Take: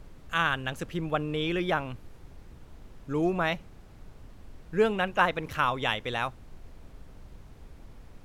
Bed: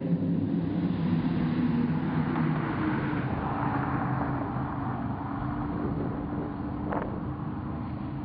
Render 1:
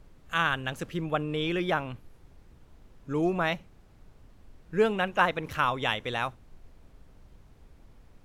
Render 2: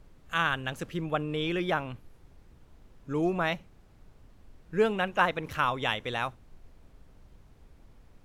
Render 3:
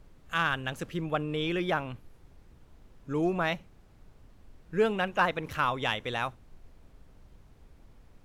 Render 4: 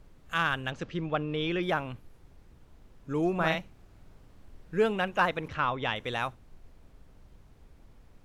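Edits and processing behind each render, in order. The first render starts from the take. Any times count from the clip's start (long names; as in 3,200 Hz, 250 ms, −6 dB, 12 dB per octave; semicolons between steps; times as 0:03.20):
noise reduction from a noise print 6 dB
level −1 dB
soft clipping −12 dBFS, distortion −24 dB
0:00.71–0:01.63: low-pass filter 5,900 Hz 24 dB per octave; 0:03.35–0:04.77: double-tracking delay 50 ms −3 dB; 0:05.48–0:05.96: high-frequency loss of the air 140 metres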